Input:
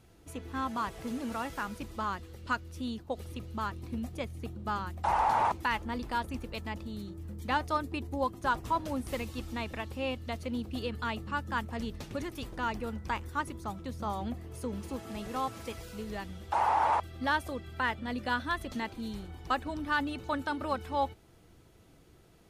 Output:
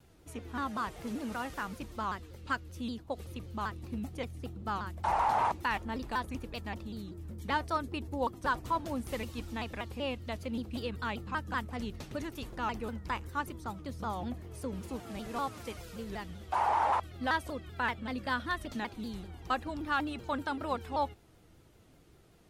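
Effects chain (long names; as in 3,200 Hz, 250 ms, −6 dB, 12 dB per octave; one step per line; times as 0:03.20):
pitch modulation by a square or saw wave saw down 5.2 Hz, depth 160 cents
level −1.5 dB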